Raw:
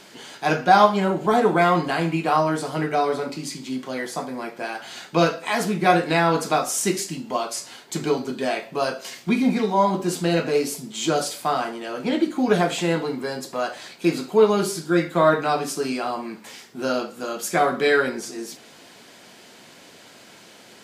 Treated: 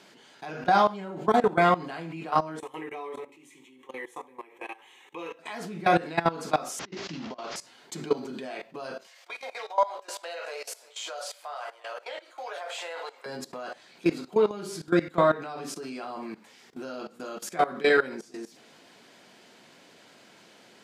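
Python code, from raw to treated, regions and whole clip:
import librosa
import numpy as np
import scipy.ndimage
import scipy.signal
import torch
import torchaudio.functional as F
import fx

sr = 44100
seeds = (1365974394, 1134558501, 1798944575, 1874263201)

y = fx.chain(x, sr, fx.low_shelf(hz=310.0, db=-9.0),
    fx.fixed_phaser(hz=970.0, stages=8), at=(2.59, 5.39))
y = fx.chain(y, sr, fx.delta_mod(bps=32000, step_db=-32.0),
    fx.over_compress(threshold_db=-29.0, ratio=-0.5), at=(6.79, 7.56))
y = fx.chain(y, sr, fx.ellip_highpass(hz=540.0, order=4, stop_db=70),
    fx.echo_single(ms=346, db=-22.5), at=(9.07, 13.26))
y = scipy.signal.sosfilt(scipy.signal.butter(2, 110.0, 'highpass', fs=sr, output='sos'), y)
y = fx.high_shelf(y, sr, hz=7400.0, db=-8.5)
y = fx.level_steps(y, sr, step_db=18)
y = F.gain(torch.from_numpy(y), -1.0).numpy()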